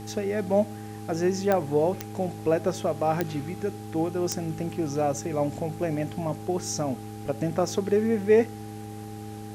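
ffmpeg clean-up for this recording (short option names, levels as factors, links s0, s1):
-af "adeclick=t=4,bandreject=f=106.3:t=h:w=4,bandreject=f=212.6:t=h:w=4,bandreject=f=318.9:t=h:w=4,bandreject=f=425.2:t=h:w=4,bandreject=f=800:w=30,afwtdn=0.0025"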